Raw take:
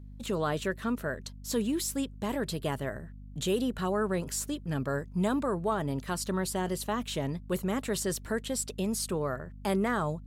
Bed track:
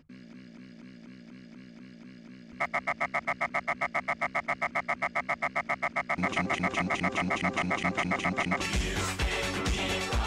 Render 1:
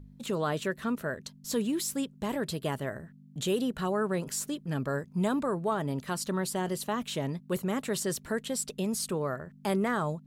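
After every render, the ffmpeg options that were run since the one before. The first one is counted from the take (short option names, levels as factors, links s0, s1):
-af "bandreject=f=50:t=h:w=4,bandreject=f=100:t=h:w=4"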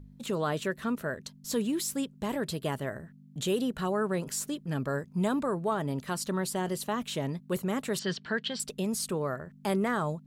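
-filter_complex "[0:a]asettb=1/sr,asplit=3[s0][s1][s2];[s0]atrim=end=7.994[s3];[s1]atrim=start=7.99:end=8.6,asetpts=PTS-STARTPTS,afade=t=in:d=0.004:c=qsin,afade=t=out:st=0.606:d=0.004:c=qsin,highpass=140,equalizer=f=180:t=q:w=4:g=5,equalizer=f=290:t=q:w=4:g=-7,equalizer=f=540:t=q:w=4:g=-5,equalizer=f=1600:t=q:w=4:g=7,equalizer=f=3100:t=q:w=4:g=9,equalizer=f=4500:t=q:w=4:g=7,lowpass=f=5000:w=0.5412,lowpass=f=5000:w=1.3066[s4];[s2]atrim=start=8.596[s5];[s3][s4]acrossfade=d=0.004:c1=hsin:c2=qsin[s6];[s6][s5]acrossfade=d=0.004:c1=qsin:c2=hsin"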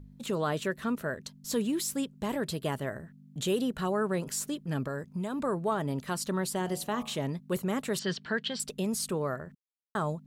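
-filter_complex "[0:a]asettb=1/sr,asplit=3[s0][s1][s2];[s0]atrim=end=4.874[s3];[s1]atrim=start=4.87:end=5.4,asetpts=PTS-STARTPTS,afade=t=in:d=0.004:c=qsin,afade=t=out:st=0.526:d=0.004:c=qsin,acompressor=threshold=0.0316:ratio=6:attack=3.2:release=140:knee=1:detection=peak[s4];[s2]atrim=start=5.396[s5];[s3][s4]acrossfade=d=0.004:c1=hsin:c2=qsin[s6];[s6][s5]acrossfade=d=0.004:c1=qsin:c2=hsin,asettb=1/sr,asplit=3[s7][s8][s9];[s7]atrim=end=6.584[s10];[s8]atrim=start=6.58:end=7.19,asetpts=PTS-STARTPTS,afade=t=in:d=0.004:c=qsin,afade=t=out:st=0.606:d=0.004:c=qsin,bandreject=f=56.16:t=h:w=4,bandreject=f=112.32:t=h:w=4,bandreject=f=168.48:t=h:w=4,bandreject=f=224.64:t=h:w=4,bandreject=f=280.8:t=h:w=4,bandreject=f=336.96:t=h:w=4,bandreject=f=393.12:t=h:w=4,bandreject=f=449.28:t=h:w=4,bandreject=f=505.44:t=h:w=4,bandreject=f=561.6:t=h:w=4,bandreject=f=617.76:t=h:w=4,bandreject=f=673.92:t=h:w=4,bandreject=f=730.08:t=h:w=4,bandreject=f=786.24:t=h:w=4,bandreject=f=842.4:t=h:w=4,bandreject=f=898.56:t=h:w=4,bandreject=f=954.72:t=h:w=4,bandreject=f=1010.88:t=h:w=4,bandreject=f=1067.04:t=h:w=4,bandreject=f=1123.2:t=h:w=4,bandreject=f=1179.36:t=h:w=4,bandreject=f=1235.52:t=h:w=4[s11];[s9]atrim=start=7.186[s12];[s10][s11]acrossfade=d=0.004:c1=hsin:c2=qsin[s13];[s13][s12]acrossfade=d=0.004:c1=qsin:c2=hsin,asplit=3[s14][s15][s16];[s14]atrim=end=9.55,asetpts=PTS-STARTPTS,afade=t=out:st=9.546:d=0.004:c=hsin[s17];[s15]atrim=start=9.55:end=9.95,asetpts=PTS-STARTPTS,volume=0[s18];[s16]atrim=start=9.95,asetpts=PTS-STARTPTS,afade=t=in:d=0.004:c=hsin[s19];[s17][s18][s19]concat=n=3:v=0:a=1"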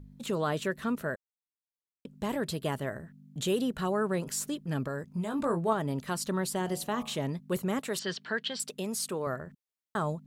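-filter_complex "[0:a]asettb=1/sr,asplit=3[s0][s1][s2];[s0]atrim=end=5.124[s3];[s1]atrim=start=5.12:end=5.73,asetpts=PTS-STARTPTS,afade=t=in:d=0.004:c=qsin,afade=t=out:st=0.606:d=0.004:c=qsin,asplit=2[s4][s5];[s5]adelay=18,volume=0.562[s6];[s4][s6]amix=inputs=2:normalize=0,atrim=end_sample=26901[s7];[s2]atrim=start=5.726[s8];[s3][s7]acrossfade=d=0.004:c1=hsin:c2=qsin[s9];[s9][s8]acrossfade=d=0.004:c1=qsin:c2=hsin,asettb=1/sr,asplit=3[s10][s11][s12];[s10]atrim=end=7.794[s13];[s11]atrim=start=7.79:end=9.27,asetpts=PTS-STARTPTS,afade=t=in:d=0.004:c=qsin,afade=t=out:st=1.476:d=0.004:c=qsin,highpass=f=310:p=1[s14];[s12]atrim=start=9.266[s15];[s13][s14]acrossfade=d=0.004:c1=hsin:c2=qsin[s16];[s16][s15]acrossfade=d=0.004:c1=qsin:c2=hsin,asplit=3[s17][s18][s19];[s17]atrim=end=1.16,asetpts=PTS-STARTPTS,afade=t=out:st=1.156:d=0.004:c=hsin[s20];[s18]atrim=start=1.16:end=2.05,asetpts=PTS-STARTPTS,volume=0[s21];[s19]atrim=start=2.05,asetpts=PTS-STARTPTS,afade=t=in:d=0.004:c=hsin[s22];[s20][s21][s22]concat=n=3:v=0:a=1"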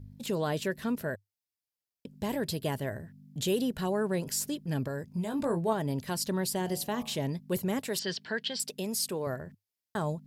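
-af "equalizer=f=100:t=o:w=0.33:g=10,equalizer=f=1250:t=o:w=0.33:g=-10,equalizer=f=5000:t=o:w=0.33:g=6,equalizer=f=12500:t=o:w=0.33:g=7"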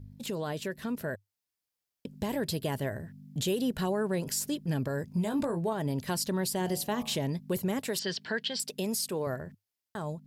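-af "alimiter=level_in=1.19:limit=0.0631:level=0:latency=1:release=238,volume=0.841,dynaudnorm=f=180:g=13:m=1.58"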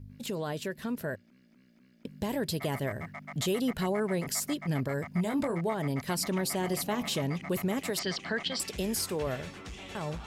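-filter_complex "[1:a]volume=0.2[s0];[0:a][s0]amix=inputs=2:normalize=0"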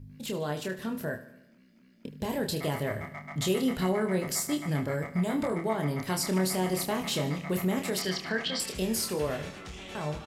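-filter_complex "[0:a]asplit=2[s0][s1];[s1]adelay=27,volume=0.562[s2];[s0][s2]amix=inputs=2:normalize=0,aecho=1:1:75|150|225|300|375|450:0.188|0.107|0.0612|0.0349|0.0199|0.0113"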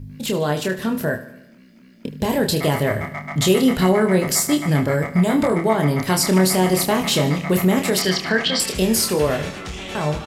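-af "volume=3.76"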